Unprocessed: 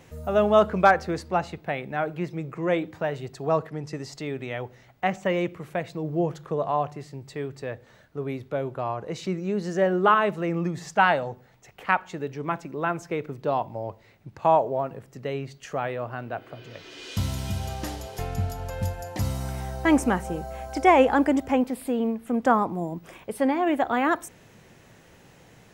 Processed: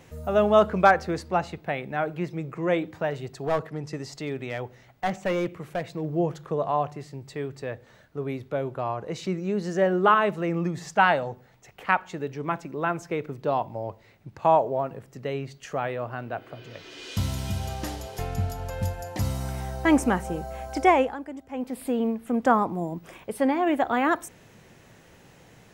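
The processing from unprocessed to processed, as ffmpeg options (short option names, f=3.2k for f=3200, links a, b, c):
-filter_complex "[0:a]asettb=1/sr,asplit=3[a][b][c];[a]atrim=end=3.104[d];[b]atrim=start=3.1:end=6.15,asetpts=PTS-STARTPTS,afade=t=in:d=0.004:c=qsin,afade=t=out:st=3.046:d=0.004:c=qsin,aeval=exprs='clip(val(0),-1,0.075)':c=same[e];[c]atrim=start=6.146[f];[d][e]acrossfade=d=0.004:c1=hsin:c2=qsin[g];[g][f]acrossfade=d=0.004:c1=qsin:c2=hsin,asplit=3[h][i][j];[h]atrim=end=21.17,asetpts=PTS-STARTPTS,afade=t=out:st=20.84:d=0.33:silence=0.158489[k];[i]atrim=start=21.17:end=21.51,asetpts=PTS-STARTPTS,volume=-16dB[l];[j]atrim=start=21.51,asetpts=PTS-STARTPTS,afade=t=in:d=0.33:silence=0.158489[m];[k][l][m]concat=n=3:v=0:a=1"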